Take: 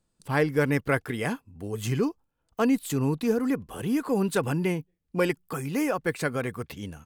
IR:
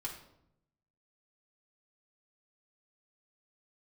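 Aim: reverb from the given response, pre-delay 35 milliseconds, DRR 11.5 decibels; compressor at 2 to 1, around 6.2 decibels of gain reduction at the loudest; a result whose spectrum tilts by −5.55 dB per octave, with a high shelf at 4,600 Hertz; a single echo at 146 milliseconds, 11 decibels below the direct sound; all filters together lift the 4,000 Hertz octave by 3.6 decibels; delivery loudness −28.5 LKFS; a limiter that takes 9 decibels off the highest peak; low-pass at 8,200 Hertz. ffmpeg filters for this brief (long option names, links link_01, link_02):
-filter_complex "[0:a]lowpass=8200,equalizer=frequency=4000:width_type=o:gain=7,highshelf=frequency=4600:gain=-4,acompressor=threshold=-30dB:ratio=2,alimiter=level_in=0.5dB:limit=-24dB:level=0:latency=1,volume=-0.5dB,aecho=1:1:146:0.282,asplit=2[link_01][link_02];[1:a]atrim=start_sample=2205,adelay=35[link_03];[link_02][link_03]afir=irnorm=-1:irlink=0,volume=-11dB[link_04];[link_01][link_04]amix=inputs=2:normalize=0,volume=5.5dB"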